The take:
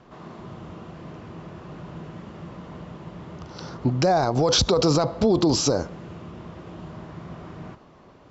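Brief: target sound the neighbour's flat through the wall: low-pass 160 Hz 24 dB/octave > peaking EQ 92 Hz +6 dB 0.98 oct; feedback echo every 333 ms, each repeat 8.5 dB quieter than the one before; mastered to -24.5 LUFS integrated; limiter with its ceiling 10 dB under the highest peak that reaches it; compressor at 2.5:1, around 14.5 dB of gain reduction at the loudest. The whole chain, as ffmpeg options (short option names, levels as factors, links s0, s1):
-af "acompressor=threshold=0.0112:ratio=2.5,alimiter=level_in=2.66:limit=0.0631:level=0:latency=1,volume=0.376,lowpass=f=160:w=0.5412,lowpass=f=160:w=1.3066,equalizer=f=92:t=o:w=0.98:g=6,aecho=1:1:333|666|999|1332:0.376|0.143|0.0543|0.0206,volume=10.6"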